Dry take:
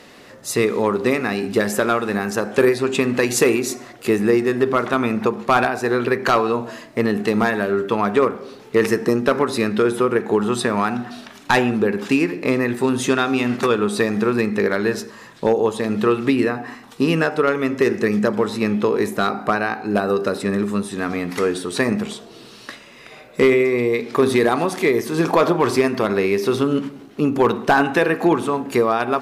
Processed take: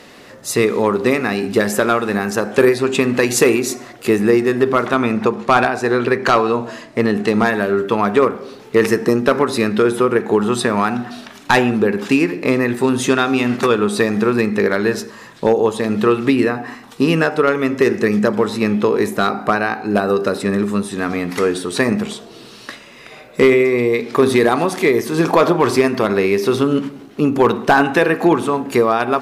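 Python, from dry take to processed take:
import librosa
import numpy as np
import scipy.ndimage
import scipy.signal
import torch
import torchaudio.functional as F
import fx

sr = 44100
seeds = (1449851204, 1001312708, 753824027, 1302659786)

y = fx.lowpass(x, sr, hz=10000.0, slope=12, at=(4.93, 7.45))
y = F.gain(torch.from_numpy(y), 3.0).numpy()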